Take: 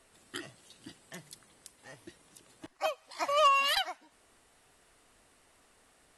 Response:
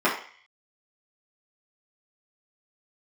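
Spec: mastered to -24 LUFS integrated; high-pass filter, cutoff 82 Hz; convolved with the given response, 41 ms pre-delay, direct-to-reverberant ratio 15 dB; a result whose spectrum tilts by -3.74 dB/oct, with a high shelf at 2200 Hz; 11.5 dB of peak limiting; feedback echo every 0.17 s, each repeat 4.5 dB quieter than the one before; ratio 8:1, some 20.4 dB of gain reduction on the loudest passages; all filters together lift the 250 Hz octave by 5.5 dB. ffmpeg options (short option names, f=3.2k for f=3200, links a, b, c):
-filter_complex "[0:a]highpass=82,equalizer=f=250:t=o:g=8,highshelf=f=2.2k:g=-7,acompressor=threshold=-44dB:ratio=8,alimiter=level_in=17dB:limit=-24dB:level=0:latency=1,volume=-17dB,aecho=1:1:170|340|510|680|850|1020|1190|1360|1530:0.596|0.357|0.214|0.129|0.0772|0.0463|0.0278|0.0167|0.01,asplit=2[a][b];[1:a]atrim=start_sample=2205,adelay=41[c];[b][c]afir=irnorm=-1:irlink=0,volume=-32dB[d];[a][d]amix=inputs=2:normalize=0,volume=27.5dB"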